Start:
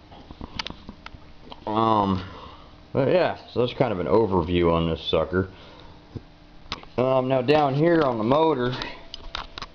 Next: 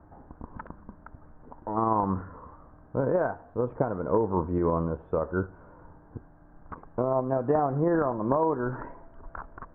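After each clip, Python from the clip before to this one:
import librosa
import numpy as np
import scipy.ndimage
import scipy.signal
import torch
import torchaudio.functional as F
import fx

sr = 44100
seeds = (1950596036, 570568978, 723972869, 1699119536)

y = scipy.signal.sosfilt(scipy.signal.cheby1(5, 1.0, 1600.0, 'lowpass', fs=sr, output='sos'), x)
y = y * 10.0 ** (-4.5 / 20.0)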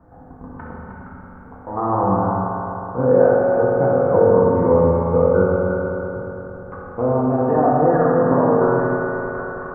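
y = x + 10.0 ** (-6.5 / 20.0) * np.pad(x, (int(309 * sr / 1000.0), 0))[:len(x)]
y = fx.rev_fdn(y, sr, rt60_s=3.7, lf_ratio=1.0, hf_ratio=0.85, size_ms=12.0, drr_db=-8.0)
y = y * 10.0 ** (1.0 / 20.0)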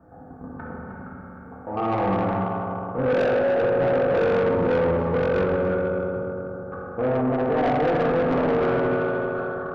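y = fx.notch_comb(x, sr, f0_hz=1000.0)
y = 10.0 ** (-18.0 / 20.0) * np.tanh(y / 10.0 ** (-18.0 / 20.0))
y = y + 10.0 ** (-15.0 / 20.0) * np.pad(y, (int(289 * sr / 1000.0), 0))[:len(y)]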